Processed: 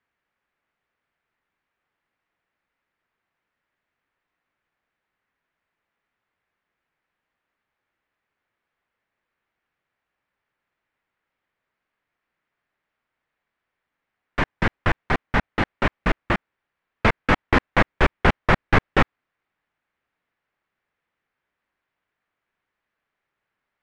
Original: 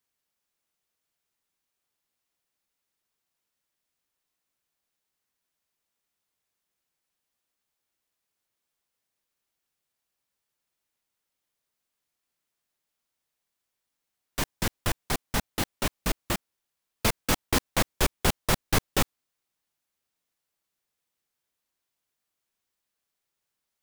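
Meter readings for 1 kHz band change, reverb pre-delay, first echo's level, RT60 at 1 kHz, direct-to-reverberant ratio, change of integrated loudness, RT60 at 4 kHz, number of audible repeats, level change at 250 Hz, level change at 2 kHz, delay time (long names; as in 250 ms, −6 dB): +9.0 dB, no reverb audible, no echo audible, no reverb audible, no reverb audible, +6.0 dB, no reverb audible, no echo audible, +7.0 dB, +10.0 dB, no echo audible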